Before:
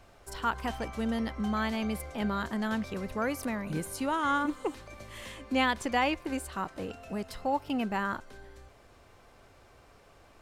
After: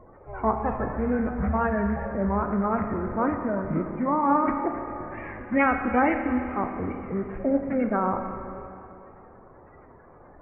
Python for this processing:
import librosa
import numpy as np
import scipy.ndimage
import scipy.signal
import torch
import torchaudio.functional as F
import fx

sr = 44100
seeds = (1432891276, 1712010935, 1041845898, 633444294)

y = fx.spec_quant(x, sr, step_db=30)
y = scipy.signal.sosfilt(scipy.signal.butter(12, 2700.0, 'lowpass', fs=sr, output='sos'), y)
y = fx.formant_shift(y, sr, semitones=-4)
y = fx.wow_flutter(y, sr, seeds[0], rate_hz=2.1, depth_cents=110.0)
y = fx.rev_schroeder(y, sr, rt60_s=2.7, comb_ms=25, drr_db=5.0)
y = y * 10.0 ** (6.5 / 20.0)